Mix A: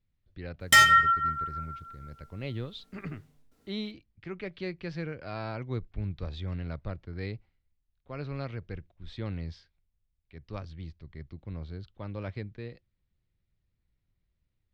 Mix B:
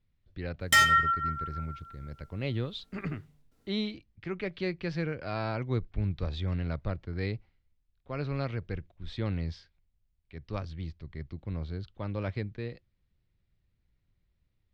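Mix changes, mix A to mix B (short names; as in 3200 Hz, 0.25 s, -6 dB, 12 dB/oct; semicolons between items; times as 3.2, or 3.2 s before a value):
speech +3.5 dB; background -3.5 dB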